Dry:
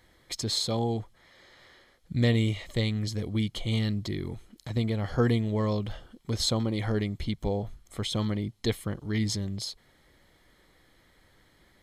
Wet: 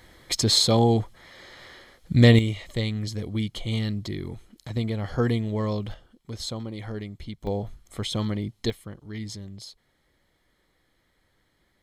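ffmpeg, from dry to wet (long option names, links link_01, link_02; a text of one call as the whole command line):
ffmpeg -i in.wav -af "asetnsamples=nb_out_samples=441:pad=0,asendcmd='2.39 volume volume 0.5dB;5.94 volume volume -6dB;7.47 volume volume 1.5dB;8.7 volume volume -7dB',volume=9dB" out.wav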